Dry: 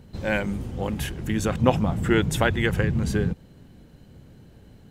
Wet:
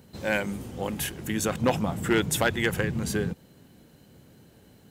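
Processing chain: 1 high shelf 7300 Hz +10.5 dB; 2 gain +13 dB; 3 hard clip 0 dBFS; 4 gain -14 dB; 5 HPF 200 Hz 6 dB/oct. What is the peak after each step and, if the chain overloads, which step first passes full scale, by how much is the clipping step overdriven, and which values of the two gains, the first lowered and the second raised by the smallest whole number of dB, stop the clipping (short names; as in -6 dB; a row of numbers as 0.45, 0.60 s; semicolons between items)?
-4.0, +9.0, 0.0, -14.0, -9.5 dBFS; step 2, 9.0 dB; step 2 +4 dB, step 4 -5 dB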